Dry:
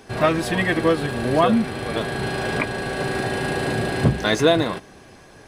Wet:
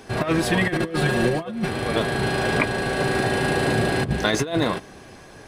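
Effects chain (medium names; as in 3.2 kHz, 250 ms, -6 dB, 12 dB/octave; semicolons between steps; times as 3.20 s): 0.68–1.68 s: comb 5.6 ms, depth 99%; compressor with a negative ratio -20 dBFS, ratio -0.5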